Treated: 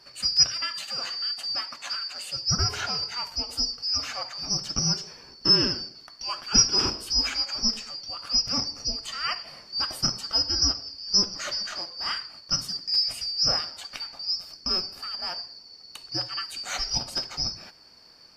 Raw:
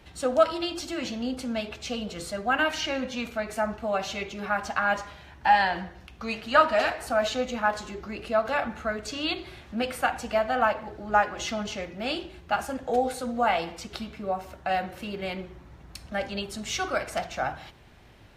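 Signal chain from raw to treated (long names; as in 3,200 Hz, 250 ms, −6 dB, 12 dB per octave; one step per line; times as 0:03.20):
band-splitting scrambler in four parts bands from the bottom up 2341
0:00.63–0:02.31: Bessel high-pass filter 190 Hz, order 2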